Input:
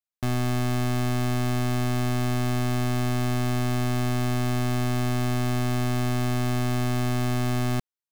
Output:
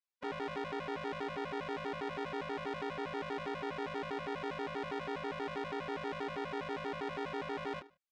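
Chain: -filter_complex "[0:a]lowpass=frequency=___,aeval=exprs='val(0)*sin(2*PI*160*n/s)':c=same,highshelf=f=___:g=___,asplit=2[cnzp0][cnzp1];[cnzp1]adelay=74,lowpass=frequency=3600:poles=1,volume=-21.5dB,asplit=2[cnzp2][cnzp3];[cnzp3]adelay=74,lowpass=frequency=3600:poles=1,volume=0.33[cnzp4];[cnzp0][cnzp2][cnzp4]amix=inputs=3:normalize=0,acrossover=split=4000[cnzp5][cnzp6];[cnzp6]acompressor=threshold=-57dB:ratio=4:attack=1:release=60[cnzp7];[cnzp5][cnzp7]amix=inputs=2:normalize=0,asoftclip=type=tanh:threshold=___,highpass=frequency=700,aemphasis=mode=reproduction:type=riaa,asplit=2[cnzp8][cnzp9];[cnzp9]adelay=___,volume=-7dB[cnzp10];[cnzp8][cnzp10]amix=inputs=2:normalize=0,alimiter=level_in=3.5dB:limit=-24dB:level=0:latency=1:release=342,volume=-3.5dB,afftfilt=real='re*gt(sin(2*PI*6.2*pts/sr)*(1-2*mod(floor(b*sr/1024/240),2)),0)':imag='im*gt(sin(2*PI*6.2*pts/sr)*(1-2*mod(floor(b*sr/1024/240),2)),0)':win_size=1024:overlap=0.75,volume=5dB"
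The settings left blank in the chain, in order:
7800, 2700, 8.5, -22dB, 27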